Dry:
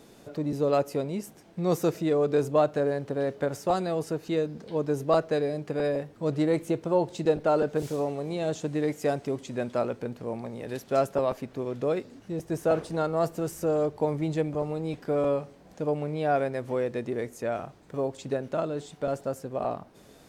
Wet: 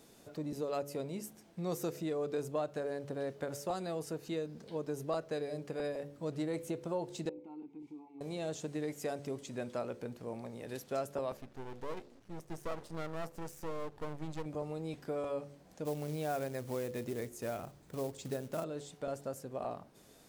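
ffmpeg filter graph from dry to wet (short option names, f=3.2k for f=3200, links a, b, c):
-filter_complex "[0:a]asettb=1/sr,asplit=3[a][b][c];[a]atrim=end=7.294[d];[b]atrim=start=7.29:end=8.21,asetpts=PTS-STARTPTS,afade=t=in:d=0.004:c=qsin,afade=t=out:st=0.916:d=0.004:c=qsin,lowshelf=f=160:g=8.5,acompressor=threshold=-29dB:ratio=3:attack=3.2:release=140:knee=1:detection=peak,asplit=3[e][f][g];[e]bandpass=f=300:t=q:w=8,volume=0dB[h];[f]bandpass=f=870:t=q:w=8,volume=-6dB[i];[g]bandpass=f=2.24k:t=q:w=8,volume=-9dB[j];[h][i][j]amix=inputs=3:normalize=0[k];[c]atrim=start=8.206[l];[d][k]acrossfade=d=0.004:c1=hsin:c2=qsin[m];[m][l]acrossfade=d=0.004:c1=qsin:c2=hsin,asettb=1/sr,asplit=3[n][o][p];[n]atrim=end=11.374[q];[o]atrim=start=11.37:end=14.46,asetpts=PTS-STARTPTS,afade=t=in:d=0.004:c=qsin,afade=t=out:st=3.086:d=0.004:c=qsin,highshelf=f=4.8k:g=-6.5,aeval=exprs='max(val(0),0)':c=same[r];[p]atrim=start=14.456[s];[q][r]acrossfade=d=0.004:c1=hsin:c2=qsin[t];[t][s]acrossfade=d=0.004:c1=qsin:c2=hsin,asettb=1/sr,asplit=3[u][v][w];[u]atrim=end=15.854[x];[v]atrim=start=15.85:end=18.64,asetpts=PTS-STARTPTS,afade=t=in:d=0.004:c=qsin,afade=t=out:st=2.786:d=0.004:c=qsin,lowshelf=f=200:g=6,acrusher=bits=5:mode=log:mix=0:aa=0.000001[y];[w]atrim=start=18.636[z];[x][y]acrossfade=d=0.004:c1=hsin:c2=qsin[aa];[aa][z]acrossfade=d=0.004:c1=qsin:c2=hsin,highshelf=f=4.8k:g=7.5,bandreject=f=71.38:t=h:w=4,bandreject=f=142.76:t=h:w=4,bandreject=f=214.14:t=h:w=4,bandreject=f=285.52:t=h:w=4,bandreject=f=356.9:t=h:w=4,bandreject=f=428.28:t=h:w=4,bandreject=f=499.66:t=h:w=4,bandreject=f=571.04:t=h:w=4,acompressor=threshold=-27dB:ratio=2,volume=-8dB"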